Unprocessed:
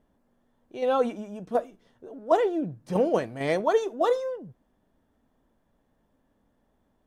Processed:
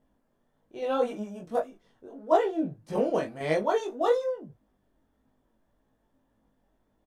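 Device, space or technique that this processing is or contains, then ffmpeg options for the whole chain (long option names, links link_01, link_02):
double-tracked vocal: -filter_complex "[0:a]asplit=2[link_01][link_02];[link_02]adelay=19,volume=-6dB[link_03];[link_01][link_03]amix=inputs=2:normalize=0,flanger=delay=19:depth=3.3:speed=1.7,asettb=1/sr,asplit=3[link_04][link_05][link_06];[link_04]atrim=end=1.074[link_07];[link_05]atrim=start=1.07:end=1.6,asetpts=PTS-STARTPTS,afade=type=in:duration=0.004:curve=qsin,afade=type=out:start_time=0.526:duration=0.004:curve=qsin,highshelf=frequency=6000:gain=5.5[link_08];[link_06]atrim=start=1.596[link_09];[link_07][link_08]acrossfade=duration=0.004:curve1=hsin:curve2=qsin[link_10];[link_10][link_09]acrossfade=duration=0.004:curve1=qsin:curve2=hsin"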